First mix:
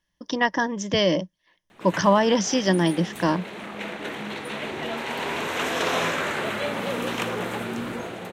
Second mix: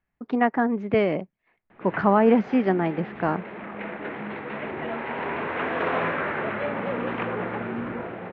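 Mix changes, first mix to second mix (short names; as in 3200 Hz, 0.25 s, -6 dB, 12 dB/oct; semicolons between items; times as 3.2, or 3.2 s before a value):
speech: remove ripple EQ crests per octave 1.2, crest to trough 12 dB; master: add LPF 2200 Hz 24 dB/oct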